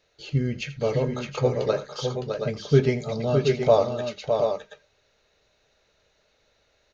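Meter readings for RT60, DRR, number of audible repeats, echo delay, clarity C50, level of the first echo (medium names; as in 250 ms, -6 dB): no reverb, no reverb, 3, 82 ms, no reverb, -16.0 dB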